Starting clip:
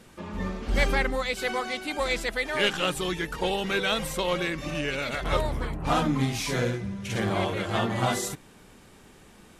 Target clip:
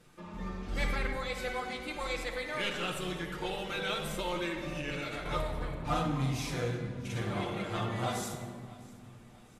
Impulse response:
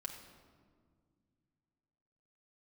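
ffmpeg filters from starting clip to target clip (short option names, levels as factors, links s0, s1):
-filter_complex "[0:a]asettb=1/sr,asplit=3[s0][s1][s2];[s0]atrim=end=4.164[s3];[s1]atrim=start=4.16:end=4.6,asetpts=PTS-STARTPTS,afade=t=in:d=0.004:c=qsin,afade=t=out:st=0.436:d=0.004:c=qsin,aecho=1:1:3.3:0.59,atrim=end_sample=19404[s4];[s2]atrim=start=4.596[s5];[s3][s4]acrossfade=d=0.004:c1=hsin:c2=qsin[s6];[s6][s5]acrossfade=d=0.004:c1=qsin:c2=hsin,aecho=1:1:651|1302|1953:0.0794|0.0381|0.0183[s7];[1:a]atrim=start_sample=2205,asetrate=37485,aresample=44100[s8];[s7][s8]afir=irnorm=-1:irlink=0,volume=0.473"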